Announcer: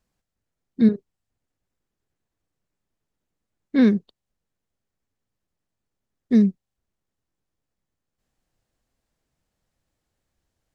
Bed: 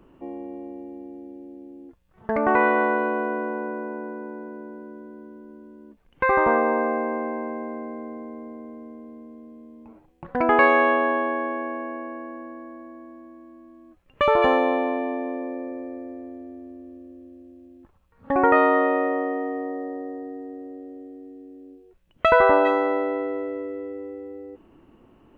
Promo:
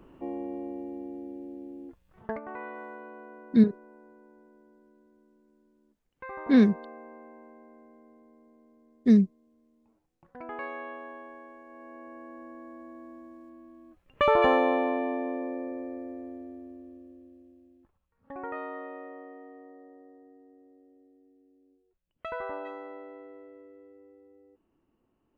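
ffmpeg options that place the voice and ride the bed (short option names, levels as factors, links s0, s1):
-filter_complex "[0:a]adelay=2750,volume=0.75[s0];[1:a]volume=7.94,afade=t=out:st=2.14:d=0.26:silence=0.0891251,afade=t=in:st=11.66:d=1.45:silence=0.125893,afade=t=out:st=16.34:d=2.01:silence=0.141254[s1];[s0][s1]amix=inputs=2:normalize=0"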